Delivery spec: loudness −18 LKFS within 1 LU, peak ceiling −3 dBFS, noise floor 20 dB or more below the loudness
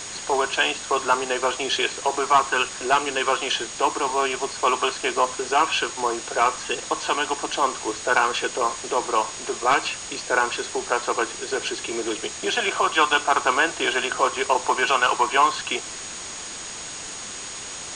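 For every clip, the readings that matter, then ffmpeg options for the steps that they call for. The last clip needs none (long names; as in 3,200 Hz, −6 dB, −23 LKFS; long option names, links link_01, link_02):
interfering tone 6,700 Hz; level of the tone −37 dBFS; background noise floor −35 dBFS; target noise floor −43 dBFS; integrated loudness −23.0 LKFS; sample peak −6.0 dBFS; target loudness −18.0 LKFS
→ -af "bandreject=frequency=6700:width=30"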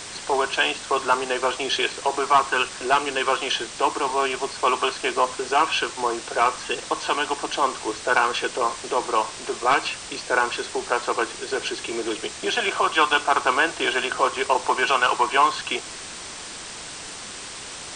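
interfering tone none found; background noise floor −37 dBFS; target noise floor −43 dBFS
→ -af "afftdn=noise_reduction=6:noise_floor=-37"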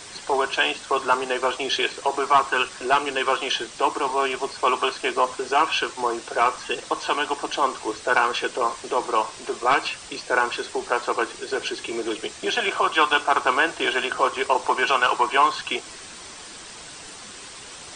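background noise floor −41 dBFS; target noise floor −43 dBFS
→ -af "afftdn=noise_reduction=6:noise_floor=-41"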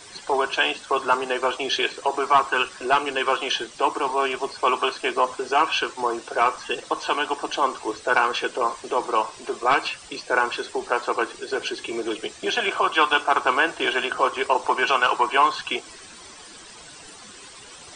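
background noise floor −44 dBFS; integrated loudness −23.0 LKFS; sample peak −6.5 dBFS; target loudness −18.0 LKFS
→ -af "volume=5dB,alimiter=limit=-3dB:level=0:latency=1"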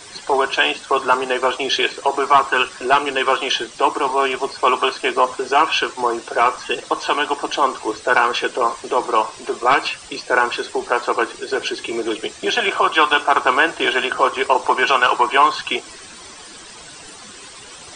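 integrated loudness −18.0 LKFS; sample peak −3.0 dBFS; background noise floor −39 dBFS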